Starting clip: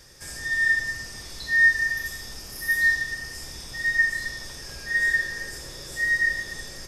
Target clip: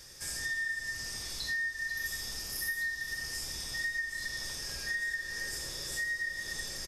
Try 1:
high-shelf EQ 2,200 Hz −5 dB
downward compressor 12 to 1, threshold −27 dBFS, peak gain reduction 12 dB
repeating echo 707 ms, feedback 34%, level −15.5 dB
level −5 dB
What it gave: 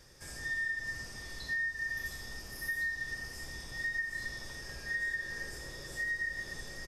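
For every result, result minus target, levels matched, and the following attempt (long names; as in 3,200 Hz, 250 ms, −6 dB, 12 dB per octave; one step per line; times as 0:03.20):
echo 218 ms late; 4,000 Hz band −6.5 dB
high-shelf EQ 2,200 Hz −5 dB
downward compressor 12 to 1, threshold −27 dBFS, peak gain reduction 12 dB
repeating echo 489 ms, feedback 34%, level −15.5 dB
level −5 dB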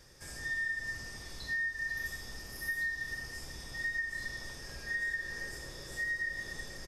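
4,000 Hz band −6.5 dB
high-shelf EQ 2,200 Hz +7 dB
downward compressor 12 to 1, threshold −27 dBFS, peak gain reduction 16.5 dB
repeating echo 489 ms, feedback 34%, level −15.5 dB
level −5 dB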